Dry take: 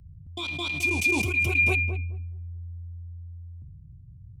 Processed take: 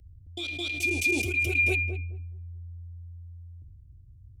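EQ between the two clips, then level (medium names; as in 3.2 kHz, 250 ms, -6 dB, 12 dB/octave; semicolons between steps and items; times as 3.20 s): static phaser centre 410 Hz, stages 4; 0.0 dB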